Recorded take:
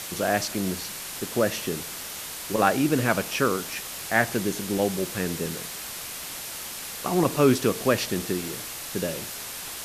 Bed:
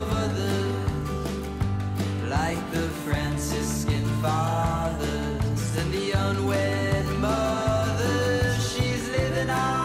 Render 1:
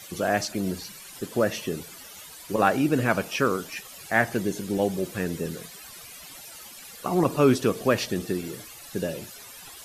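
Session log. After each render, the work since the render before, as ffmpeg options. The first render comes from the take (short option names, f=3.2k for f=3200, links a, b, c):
-af "afftdn=nr=14:nf=-37"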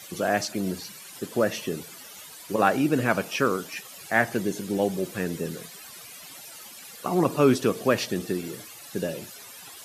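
-af "highpass=110"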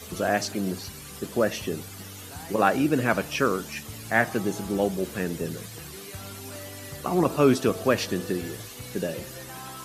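-filter_complex "[1:a]volume=-17dB[a];[0:a][a]amix=inputs=2:normalize=0"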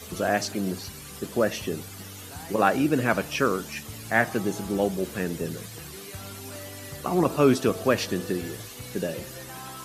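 -af anull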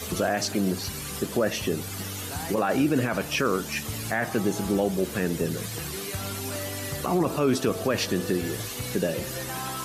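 -filter_complex "[0:a]asplit=2[a][b];[b]acompressor=threshold=-34dB:ratio=6,volume=2dB[c];[a][c]amix=inputs=2:normalize=0,alimiter=limit=-14dB:level=0:latency=1:release=22"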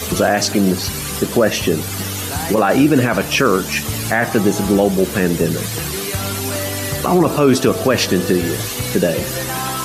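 -af "volume=10.5dB"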